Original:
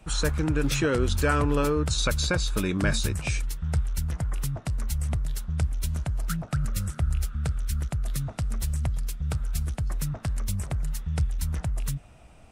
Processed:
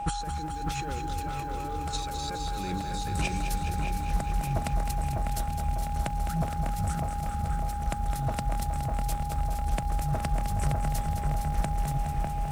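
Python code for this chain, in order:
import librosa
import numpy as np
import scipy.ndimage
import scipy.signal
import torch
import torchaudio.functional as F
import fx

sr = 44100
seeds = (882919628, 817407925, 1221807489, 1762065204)

y = fx.over_compress(x, sr, threshold_db=-31.0, ratio=-0.5)
y = fx.echo_wet_lowpass(y, sr, ms=600, feedback_pct=50, hz=2200.0, wet_db=-3.5)
y = y + 10.0 ** (-32.0 / 20.0) * np.sin(2.0 * np.pi * 820.0 * np.arange(len(y)) / sr)
y = fx.echo_crushed(y, sr, ms=209, feedback_pct=80, bits=9, wet_db=-8)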